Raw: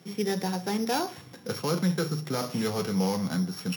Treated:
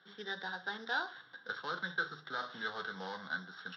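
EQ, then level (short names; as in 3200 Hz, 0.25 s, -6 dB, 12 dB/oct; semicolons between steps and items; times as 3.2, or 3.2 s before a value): double band-pass 2400 Hz, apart 1.2 oct; air absorption 310 m; +9.5 dB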